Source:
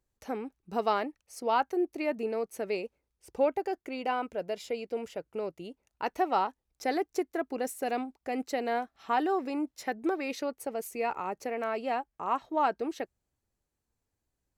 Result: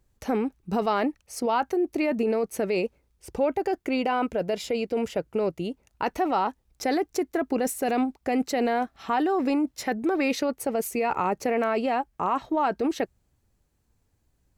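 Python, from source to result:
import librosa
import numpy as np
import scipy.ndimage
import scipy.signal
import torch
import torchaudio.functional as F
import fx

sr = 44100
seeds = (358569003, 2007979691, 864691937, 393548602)

p1 = fx.over_compress(x, sr, threshold_db=-34.0, ratio=-1.0)
p2 = x + (p1 * librosa.db_to_amplitude(2.5))
y = fx.bass_treble(p2, sr, bass_db=6, treble_db=-1)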